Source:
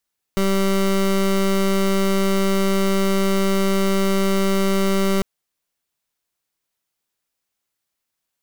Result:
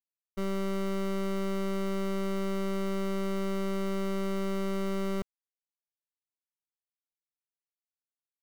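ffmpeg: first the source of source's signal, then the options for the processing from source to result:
-f lavfi -i "aevalsrc='0.126*(2*lt(mod(194*t,1),0.23)-1)':duration=4.85:sample_rate=44100"
-af "agate=range=-33dB:threshold=-12dB:ratio=3:detection=peak,highshelf=frequency=2600:gain=-8"

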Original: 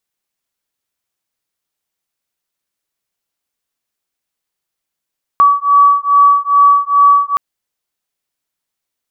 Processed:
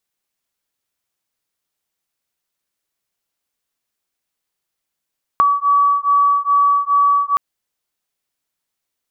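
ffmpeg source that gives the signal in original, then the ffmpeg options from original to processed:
-f lavfi -i "aevalsrc='0.335*(sin(2*PI*1140*t)+sin(2*PI*1142.4*t))':duration=1.97:sample_rate=44100"
-af "acompressor=threshold=-12dB:ratio=6"

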